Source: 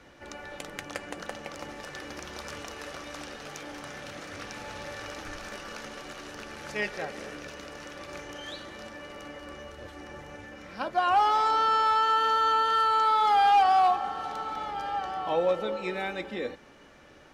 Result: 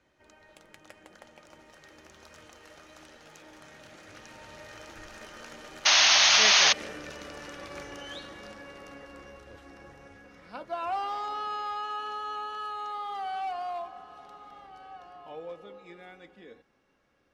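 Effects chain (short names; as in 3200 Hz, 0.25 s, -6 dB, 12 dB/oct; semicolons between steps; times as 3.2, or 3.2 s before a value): Doppler pass-by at 7.33, 20 m/s, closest 26 m; painted sound noise, 5.85–6.73, 570–6700 Hz -23 dBFS; dynamic EQ 3100 Hz, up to +5 dB, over -38 dBFS, Q 0.81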